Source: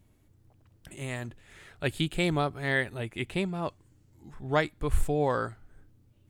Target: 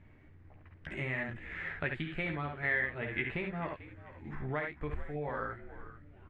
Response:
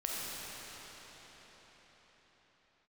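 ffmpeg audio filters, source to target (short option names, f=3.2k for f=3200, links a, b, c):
-filter_complex "[0:a]asplit=2[a][b];[b]aecho=0:1:13|54|69:0.501|0.398|0.531[c];[a][c]amix=inputs=2:normalize=0,acompressor=threshold=-37dB:ratio=12,lowpass=f=2k:t=q:w=3.2,asplit=4[d][e][f][g];[e]adelay=441,afreqshift=-76,volume=-15dB[h];[f]adelay=882,afreqshift=-152,volume=-25.2dB[i];[g]adelay=1323,afreqshift=-228,volume=-35.3dB[j];[d][h][i][j]amix=inputs=4:normalize=0,volume=2.5dB"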